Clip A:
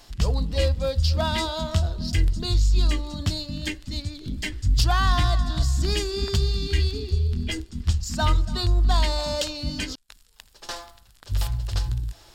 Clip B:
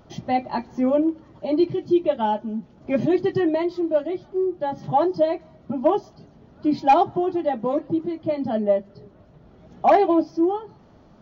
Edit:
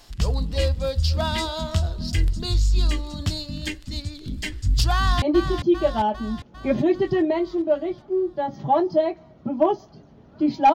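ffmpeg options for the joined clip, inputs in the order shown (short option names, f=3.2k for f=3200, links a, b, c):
-filter_complex "[0:a]apad=whole_dur=10.74,atrim=end=10.74,atrim=end=5.222[a];[1:a]atrim=start=1.458:end=6.98[b];[a][b]acrossfade=d=0.004:c1=hsin:c2=hsin,asplit=2[c][d];[d]afade=t=in:st=4.94:d=0.01,afade=t=out:st=5.22:d=0.01,aecho=0:1:400|800|1200|1600|2000|2400|2800|3200:0.421697|0.253018|0.151811|0.0910864|0.0546519|0.0327911|0.0196747|0.0118048[e];[c][e]amix=inputs=2:normalize=0"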